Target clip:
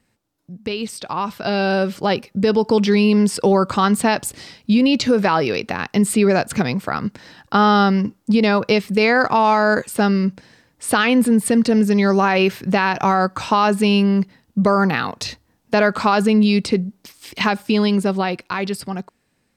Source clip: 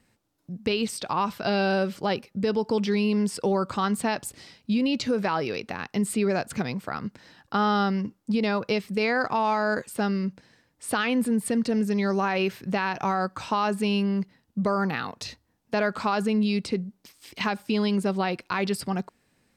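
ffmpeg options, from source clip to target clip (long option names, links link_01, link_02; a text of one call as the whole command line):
ffmpeg -i in.wav -af "dynaudnorm=framelen=270:gausssize=13:maxgain=9.5dB" out.wav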